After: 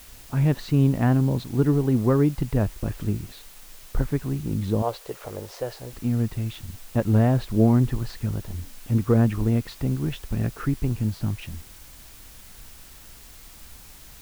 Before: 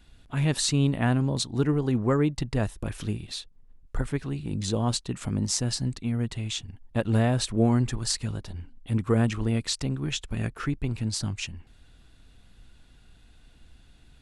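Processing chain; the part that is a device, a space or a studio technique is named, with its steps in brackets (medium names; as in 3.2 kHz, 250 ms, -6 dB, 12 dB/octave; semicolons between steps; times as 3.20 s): cassette deck with a dirty head (tape spacing loss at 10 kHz 43 dB; wow and flutter; white noise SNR 24 dB); 4.82–5.93 s: resonant low shelf 330 Hz -13.5 dB, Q 3; trim +5 dB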